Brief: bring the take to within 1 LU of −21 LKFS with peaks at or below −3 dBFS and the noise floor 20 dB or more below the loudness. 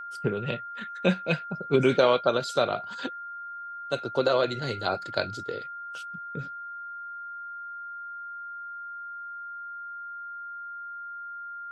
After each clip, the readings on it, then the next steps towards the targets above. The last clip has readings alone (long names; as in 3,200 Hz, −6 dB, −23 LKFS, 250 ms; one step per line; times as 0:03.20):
interfering tone 1,400 Hz; level of the tone −36 dBFS; integrated loudness −30.5 LKFS; sample peak −8.0 dBFS; target loudness −21.0 LKFS
→ notch filter 1,400 Hz, Q 30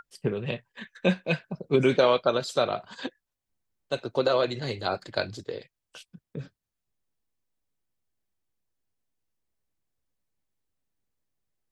interfering tone none found; integrated loudness −27.0 LKFS; sample peak −8.0 dBFS; target loudness −21.0 LKFS
→ level +6 dB
brickwall limiter −3 dBFS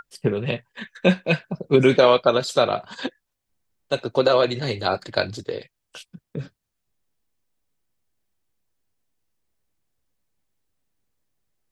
integrated loudness −21.5 LKFS; sample peak −3.0 dBFS; background noise floor −79 dBFS